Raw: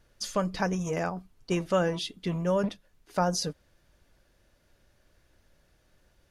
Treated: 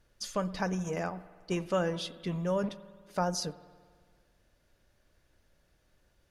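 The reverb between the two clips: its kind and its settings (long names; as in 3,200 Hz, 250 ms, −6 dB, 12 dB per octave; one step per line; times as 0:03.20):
spring reverb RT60 1.7 s, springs 54 ms, chirp 60 ms, DRR 16 dB
level −4 dB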